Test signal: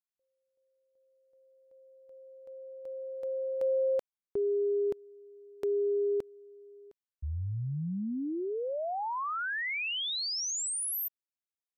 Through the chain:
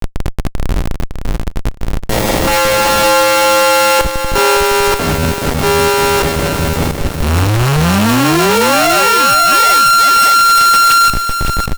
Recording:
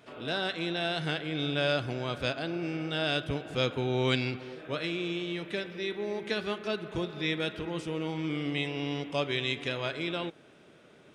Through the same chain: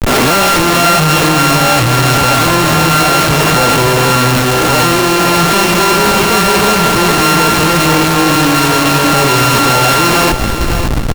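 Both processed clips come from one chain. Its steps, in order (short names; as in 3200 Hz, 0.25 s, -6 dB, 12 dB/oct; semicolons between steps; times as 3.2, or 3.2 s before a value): sample sorter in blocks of 32 samples; reverse; upward compressor 1.5:1, threshold -56 dBFS; reverse; crackle 150/s -51 dBFS; fuzz box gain 49 dB, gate -50 dBFS; chorus 0.44 Hz, delay 16 ms, depth 3.2 ms; Schmitt trigger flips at -32 dBFS; on a send: feedback echo 0.558 s, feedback 19%, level -7 dB; on the sum: maximiser +14 dB; gain -5.5 dB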